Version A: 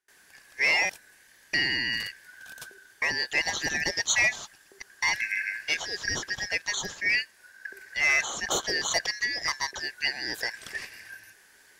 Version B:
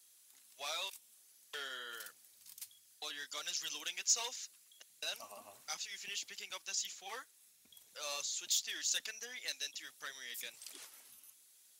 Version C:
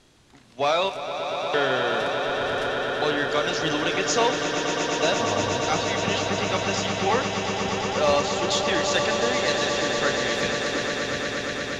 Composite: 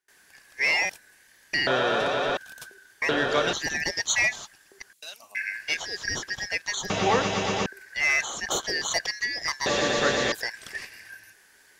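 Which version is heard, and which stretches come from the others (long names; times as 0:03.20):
A
0:01.67–0:02.37: punch in from C
0:03.09–0:03.53: punch in from C
0:04.93–0:05.35: punch in from B
0:06.90–0:07.66: punch in from C
0:09.66–0:10.32: punch in from C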